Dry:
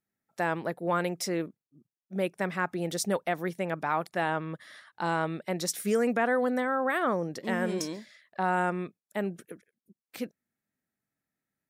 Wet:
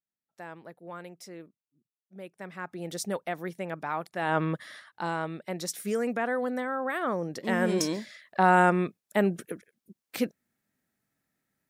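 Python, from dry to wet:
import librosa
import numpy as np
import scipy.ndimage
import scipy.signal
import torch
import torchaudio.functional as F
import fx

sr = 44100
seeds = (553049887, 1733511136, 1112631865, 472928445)

y = fx.gain(x, sr, db=fx.line((2.24, -14.0), (2.95, -3.5), (4.19, -3.5), (4.43, 8.5), (5.13, -3.0), (6.98, -3.0), (7.99, 7.0)))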